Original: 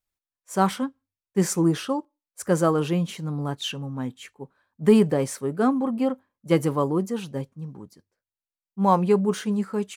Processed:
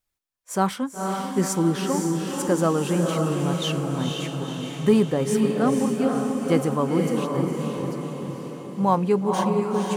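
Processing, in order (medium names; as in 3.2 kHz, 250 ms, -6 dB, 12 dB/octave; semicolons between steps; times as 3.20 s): in parallel at +1 dB: compression, threshold -34 dBFS, peak gain reduction 21 dB; on the sum: echo that smears into a reverb 497 ms, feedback 59%, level -3 dB; trim -2.5 dB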